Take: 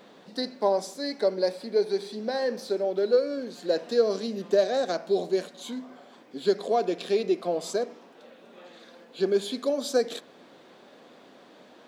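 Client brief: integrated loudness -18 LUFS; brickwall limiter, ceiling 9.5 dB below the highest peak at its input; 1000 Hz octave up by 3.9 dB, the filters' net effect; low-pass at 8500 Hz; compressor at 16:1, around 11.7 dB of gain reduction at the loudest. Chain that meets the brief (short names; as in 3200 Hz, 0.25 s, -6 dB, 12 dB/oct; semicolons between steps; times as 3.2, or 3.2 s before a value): LPF 8500 Hz; bell 1000 Hz +6 dB; compressor 16:1, threshold -27 dBFS; gain +18.5 dB; limiter -8 dBFS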